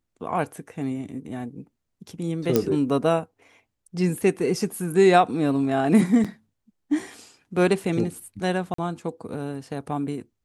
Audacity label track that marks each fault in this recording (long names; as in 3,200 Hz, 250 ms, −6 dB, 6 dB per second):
2.560000	2.560000	click −6 dBFS
6.240000	6.250000	drop-out 6.1 ms
8.740000	8.780000	drop-out 44 ms